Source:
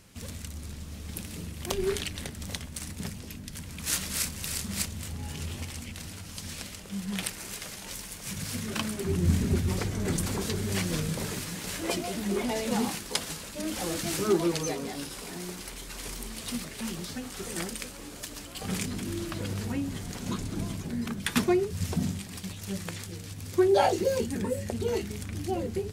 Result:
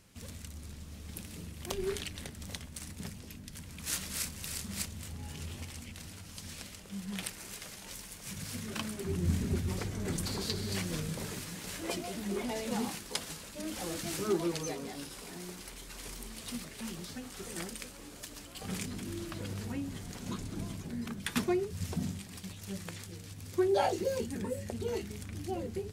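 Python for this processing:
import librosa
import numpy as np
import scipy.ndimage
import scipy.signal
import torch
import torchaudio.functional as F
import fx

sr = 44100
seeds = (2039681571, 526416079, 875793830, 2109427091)

y = fx.peak_eq(x, sr, hz=4400.0, db=12.0, octaves=0.42, at=(10.25, 10.76))
y = y * librosa.db_to_amplitude(-6.0)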